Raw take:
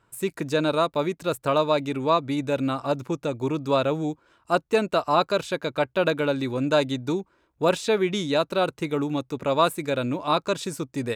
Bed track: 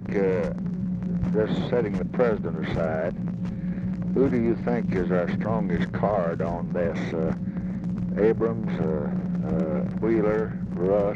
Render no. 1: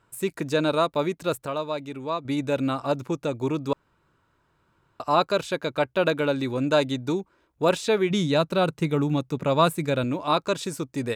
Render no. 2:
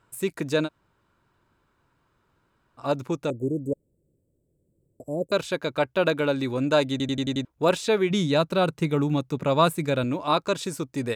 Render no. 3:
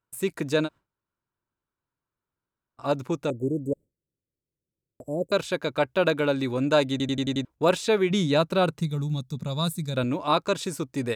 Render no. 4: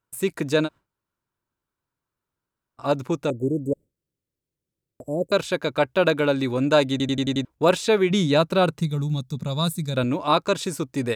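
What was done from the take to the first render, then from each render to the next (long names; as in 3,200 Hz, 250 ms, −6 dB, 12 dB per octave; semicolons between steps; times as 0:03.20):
0:01.46–0:02.25: clip gain −7.5 dB; 0:03.73–0:05.00: fill with room tone; 0:08.10–0:10.04: parametric band 160 Hz +8.5 dB
0:00.66–0:02.80: fill with room tone, crossfade 0.06 s; 0:03.30–0:05.32: Chebyshev band-stop filter 550–7,900 Hz, order 4; 0:06.91: stutter in place 0.09 s, 6 plays
noise gate with hold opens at −41 dBFS; 0:08.81–0:09.97: gain on a spectral selection 250–3,400 Hz −13 dB
level +3 dB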